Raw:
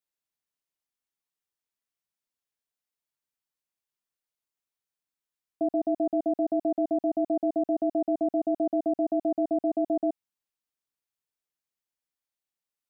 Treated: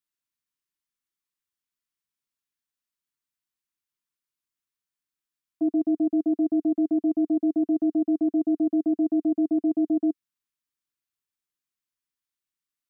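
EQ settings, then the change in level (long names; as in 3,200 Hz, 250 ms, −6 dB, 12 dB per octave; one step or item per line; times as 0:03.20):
flat-topped bell 600 Hz −12 dB 1.1 octaves
dynamic equaliser 300 Hz, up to +7 dB, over −42 dBFS, Q 2.6
0.0 dB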